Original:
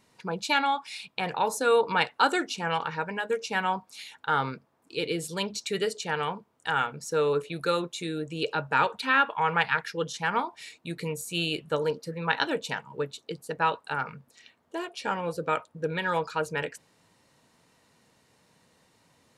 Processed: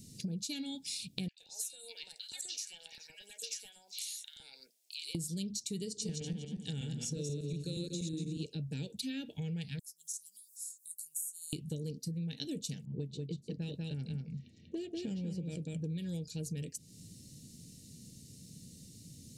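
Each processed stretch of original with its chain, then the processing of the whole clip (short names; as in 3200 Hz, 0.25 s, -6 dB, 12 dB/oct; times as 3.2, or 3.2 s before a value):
1.28–5.15 HPF 840 Hz 24 dB/oct + compressor 4:1, threshold -38 dBFS + three bands offset in time mids, highs, lows 90/120 ms, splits 1500/4500 Hz
5.85–8.46 regenerating reverse delay 0.12 s, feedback 43%, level -0.5 dB + LPF 7700 Hz
9.79–11.53 inverse Chebyshev high-pass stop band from 2000 Hz, stop band 70 dB + upward compressor, threshold -59 dBFS
12.85–15.9 low-pass opened by the level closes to 1300 Hz, open at -22.5 dBFS + echo 0.191 s -3.5 dB
whole clip: Chebyshev band-stop 200–6000 Hz, order 2; low shelf 190 Hz +3.5 dB; compressor 6:1, threshold -52 dBFS; gain +14.5 dB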